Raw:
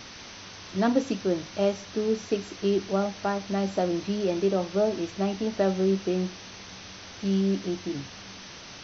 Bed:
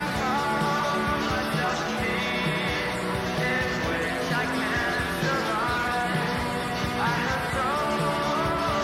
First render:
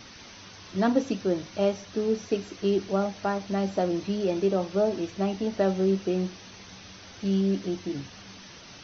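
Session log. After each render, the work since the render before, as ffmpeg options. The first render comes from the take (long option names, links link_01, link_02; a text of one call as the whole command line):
ffmpeg -i in.wav -af "afftdn=noise_reduction=6:noise_floor=-44" out.wav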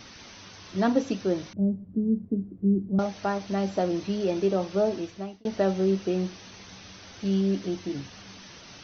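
ffmpeg -i in.wav -filter_complex "[0:a]asettb=1/sr,asplit=3[link_01][link_02][link_03];[link_01]atrim=end=1.534[link_04];[link_02]atrim=start=1.53:end=2.99,asetpts=PTS-STARTPTS,afade=type=in:duration=0.004:curve=qsin,afade=type=out:start_time=1.456:duration=0.004:curve=qsin,lowpass=frequency=210:width_type=q:width=2.2[link_05];[link_03]atrim=start=2.986[link_06];[link_04][link_05]acrossfade=duration=0.004:curve1=hsin:curve2=qsin[link_07];[link_07][link_06]acrossfade=duration=0.004:curve1=qsin:curve2=hsin,asplit=2[link_08][link_09];[link_08]atrim=end=5.45,asetpts=PTS-STARTPTS,afade=type=out:start_time=4.9:duration=0.55[link_10];[link_09]atrim=start=5.45,asetpts=PTS-STARTPTS,afade=type=in:duration=0.004:curve=hsin[link_11];[link_10][link_11]concat=n=2:v=0:a=1" out.wav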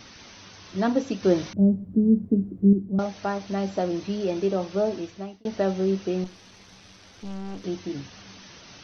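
ffmpeg -i in.wav -filter_complex "[0:a]asettb=1/sr,asplit=3[link_01][link_02][link_03];[link_01]atrim=end=6.244[link_04];[link_02]atrim=start=6.24:end=7.64,asetpts=PTS-STARTPTS,afade=type=in:duration=0.004:curve=qsin,afade=type=out:start_time=1.396:duration=0.004:curve=qsin,aeval=exprs='(tanh(44.7*val(0)+0.75)-tanh(0.75))/44.7':channel_layout=same[link_05];[link_03]atrim=start=7.636[link_06];[link_04][link_05]acrossfade=duration=0.004:curve1=hsin:curve2=qsin[link_07];[link_07][link_06]acrossfade=duration=0.004:curve1=qsin:curve2=hsin,asplit=3[link_08][link_09][link_10];[link_08]atrim=end=1.232[link_11];[link_09]atrim=start=1.228:end=2.732,asetpts=PTS-STARTPTS,volume=6dB[link_12];[link_10]atrim=start=2.728[link_13];[link_11][link_12]acrossfade=duration=0.004:curve1=hsin:curve2=hsin[link_14];[link_14][link_13]acrossfade=duration=0.004:curve1=hsin:curve2=hsin" out.wav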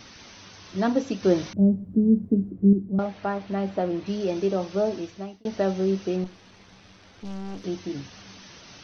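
ffmpeg -i in.wav -filter_complex "[0:a]asplit=3[link_01][link_02][link_03];[link_01]afade=type=out:start_time=2.5:duration=0.02[link_04];[link_02]lowpass=3100,afade=type=in:start_time=2.5:duration=0.02,afade=type=out:start_time=4.05:duration=0.02[link_05];[link_03]afade=type=in:start_time=4.05:duration=0.02[link_06];[link_04][link_05][link_06]amix=inputs=3:normalize=0,asettb=1/sr,asplit=3[link_07][link_08][link_09];[link_07]atrim=end=6.164[link_10];[link_08]atrim=start=6.16:end=7.25,asetpts=PTS-STARTPTS,afade=type=in:duration=0.004:curve=qsin,afade=type=out:start_time=1.086:duration=0.004:curve=qsin,aemphasis=mode=reproduction:type=50fm[link_11];[link_09]atrim=start=7.246[link_12];[link_10][link_11]acrossfade=duration=0.004:curve1=hsin:curve2=qsin[link_13];[link_13][link_12]acrossfade=duration=0.004:curve1=qsin:curve2=hsin" out.wav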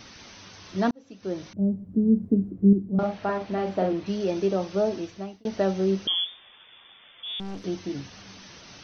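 ffmpeg -i in.wav -filter_complex "[0:a]asettb=1/sr,asplit=3[link_01][link_02][link_03];[link_01]atrim=end=2.894[link_04];[link_02]atrim=start=2.89:end=3.93,asetpts=PTS-STARTPTS,afade=type=in:duration=0.004:curve=qsin,afade=type=out:start_time=1.036:duration=0.004:curve=qsin,asplit=2[link_05][link_06];[link_06]adelay=43,volume=-4dB[link_07];[link_05][link_07]amix=inputs=2:normalize=0,atrim=end_sample=45864[link_08];[link_03]atrim=start=3.926[link_09];[link_04][link_08]acrossfade=duration=0.004:curve1=hsin:curve2=qsin[link_10];[link_10][link_09]acrossfade=duration=0.004:curve1=qsin:curve2=hsin,asettb=1/sr,asplit=3[link_11][link_12][link_13];[link_11]atrim=end=6.074[link_14];[link_12]atrim=start=6.07:end=7.4,asetpts=PTS-STARTPTS,afade=type=in:duration=0.004:curve=qsin,afade=type=out:start_time=1.326:duration=0.004:curve=qsin,lowpass=frequency=3100:width_type=q:width=0.5098,lowpass=frequency=3100:width_type=q:width=0.6013,lowpass=frequency=3100:width_type=q:width=0.9,lowpass=frequency=3100:width_type=q:width=2.563,afreqshift=-3600[link_15];[link_13]atrim=start=7.396[link_16];[link_14][link_15]acrossfade=duration=0.004:curve1=hsin:curve2=qsin[link_17];[link_17][link_16]acrossfade=duration=0.004:curve1=qsin:curve2=hsin,asplit=2[link_18][link_19];[link_18]atrim=end=0.91,asetpts=PTS-STARTPTS,afade=type=out:start_time=0.906:duration=0.004:curve=hsin[link_20];[link_19]atrim=start=0.91,asetpts=PTS-STARTPTS,afade=type=in:duration=1.37[link_21];[link_20][link_21]concat=n=2:v=0:a=1" out.wav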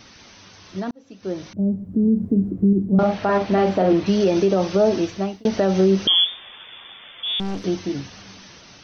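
ffmpeg -i in.wav -af "alimiter=limit=-20dB:level=0:latency=1:release=78,dynaudnorm=framelen=740:gausssize=5:maxgain=11dB" out.wav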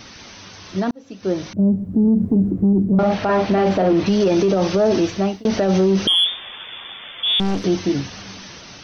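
ffmpeg -i in.wav -af "acontrast=63,alimiter=limit=-10dB:level=0:latency=1:release=18" out.wav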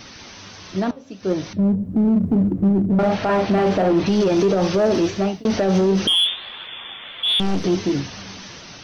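ffmpeg -i in.wav -filter_complex "[0:a]flanger=delay=5.1:depth=8:regen=80:speed=1.5:shape=triangular,asplit=2[link_01][link_02];[link_02]asoftclip=type=hard:threshold=-20.5dB,volume=-3.5dB[link_03];[link_01][link_03]amix=inputs=2:normalize=0" out.wav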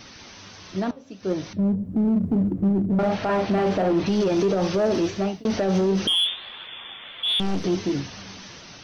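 ffmpeg -i in.wav -af "volume=-4dB" out.wav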